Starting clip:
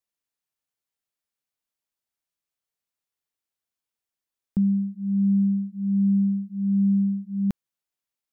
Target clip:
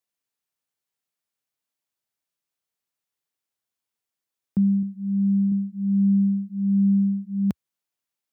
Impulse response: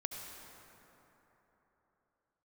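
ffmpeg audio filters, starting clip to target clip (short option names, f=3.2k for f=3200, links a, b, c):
-filter_complex "[0:a]highpass=f=76:w=0.5412,highpass=f=76:w=1.3066,asettb=1/sr,asplit=3[a][b][c];[a]atrim=end=4.814[d];[b]atrim=start=4.81:end=5.52,asetpts=PTS-STARTPTS,afade=t=in:d=0.004:c=qsin,afade=t=out:st=0.706:d=0.004:c=qsin,asplit=2[e][f];[f]adelay=17,volume=-8dB[g];[e][g]amix=inputs=2:normalize=0,atrim=end_sample=31311[h];[c]atrim=start=5.516[i];[d][h]acrossfade=d=0.004:c1=hsin:c2=qsin[j];[j][i]acrossfade=d=0.004:c1=qsin:c2=hsin,volume=1.5dB"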